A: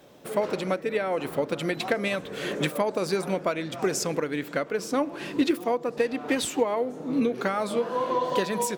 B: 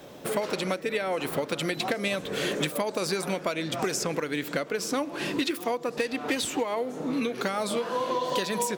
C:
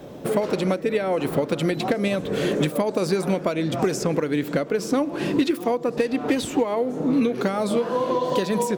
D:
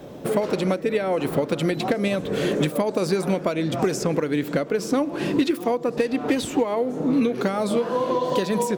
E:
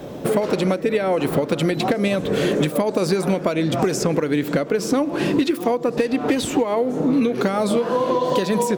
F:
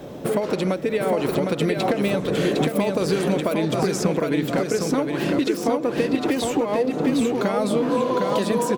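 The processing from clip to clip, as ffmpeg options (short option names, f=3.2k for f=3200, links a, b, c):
-filter_complex "[0:a]acrossover=split=1000|2900[a][b][c];[a]acompressor=threshold=-36dB:ratio=4[d];[b]acompressor=threshold=-44dB:ratio=4[e];[c]acompressor=threshold=-38dB:ratio=4[f];[d][e][f]amix=inputs=3:normalize=0,volume=7dB"
-af "tiltshelf=f=790:g=6,volume=4dB"
-af anull
-af "acompressor=threshold=-24dB:ratio=2,volume=6dB"
-af "aecho=1:1:758|1516|2274:0.631|0.151|0.0363,volume=-3dB"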